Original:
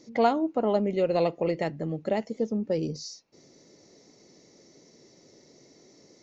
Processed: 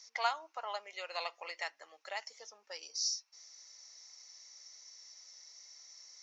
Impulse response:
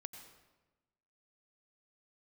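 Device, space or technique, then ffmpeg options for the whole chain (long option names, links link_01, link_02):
headphones lying on a table: -af "highpass=frequency=1000:width=0.5412,highpass=frequency=1000:width=1.3066,equalizer=frequency=5600:width_type=o:width=0.36:gain=11,volume=-1dB"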